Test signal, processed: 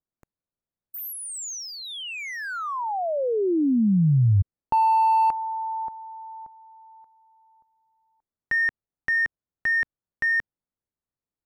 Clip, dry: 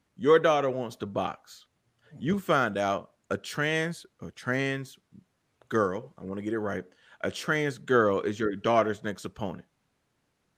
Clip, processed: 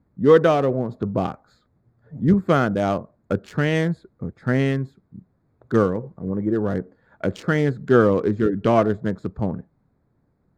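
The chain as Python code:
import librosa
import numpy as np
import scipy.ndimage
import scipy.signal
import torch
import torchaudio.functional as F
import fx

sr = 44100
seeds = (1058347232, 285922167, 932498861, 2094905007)

y = fx.wiener(x, sr, points=15)
y = fx.low_shelf(y, sr, hz=400.0, db=12.0)
y = y * 10.0 ** (2.0 / 20.0)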